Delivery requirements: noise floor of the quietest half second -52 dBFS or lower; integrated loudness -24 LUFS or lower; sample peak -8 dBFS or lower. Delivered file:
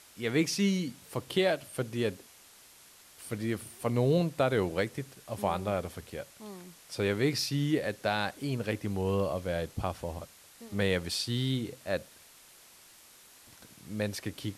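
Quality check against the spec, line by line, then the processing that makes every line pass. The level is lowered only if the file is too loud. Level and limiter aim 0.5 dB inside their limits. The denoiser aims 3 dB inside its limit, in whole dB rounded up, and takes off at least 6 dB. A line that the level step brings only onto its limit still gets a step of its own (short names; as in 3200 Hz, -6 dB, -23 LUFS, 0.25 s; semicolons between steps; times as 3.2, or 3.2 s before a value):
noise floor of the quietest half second -56 dBFS: OK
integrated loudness -31.5 LUFS: OK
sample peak -15.0 dBFS: OK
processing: none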